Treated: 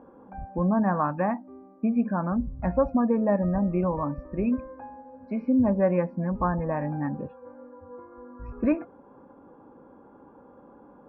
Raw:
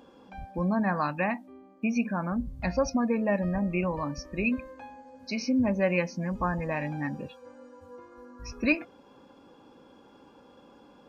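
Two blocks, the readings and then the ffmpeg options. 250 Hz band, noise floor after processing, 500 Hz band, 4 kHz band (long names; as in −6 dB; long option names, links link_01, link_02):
+3.5 dB, −53 dBFS, +3.5 dB, below −25 dB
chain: -af "lowpass=frequency=1400:width=0.5412,lowpass=frequency=1400:width=1.3066,volume=3.5dB"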